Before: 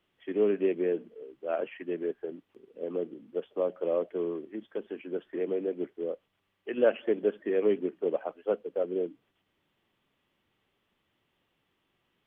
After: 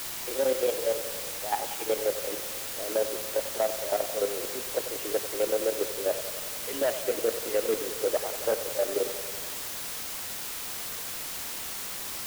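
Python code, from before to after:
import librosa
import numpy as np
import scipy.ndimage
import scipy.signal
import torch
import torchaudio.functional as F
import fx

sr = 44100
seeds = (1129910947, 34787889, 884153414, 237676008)

y = fx.pitch_glide(x, sr, semitones=4.5, runs='ending unshifted')
y = fx.peak_eq(y, sr, hz=180.0, db=-11.0, octaves=0.73)
y = fx.notch(y, sr, hz=700.0, q=21.0)
y = fx.rider(y, sr, range_db=3, speed_s=0.5)
y = fx.leveller(y, sr, passes=2)
y = fx.level_steps(y, sr, step_db=12)
y = fx.quant_dither(y, sr, seeds[0], bits=6, dither='triangular')
y = fx.echo_wet_bandpass(y, sr, ms=92, feedback_pct=71, hz=780.0, wet_db=-11.5)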